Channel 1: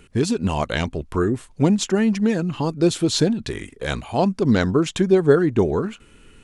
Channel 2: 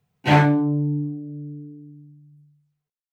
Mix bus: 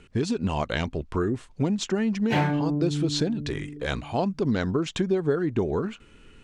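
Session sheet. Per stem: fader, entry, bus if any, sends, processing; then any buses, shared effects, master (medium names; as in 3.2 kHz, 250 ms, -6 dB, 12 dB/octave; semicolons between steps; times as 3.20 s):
-2.5 dB, 0.00 s, no send, low-pass 6.4 kHz 12 dB/octave
-0.5 dB, 2.05 s, no send, none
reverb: none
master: compression 3:1, threshold -22 dBFS, peak gain reduction 9.5 dB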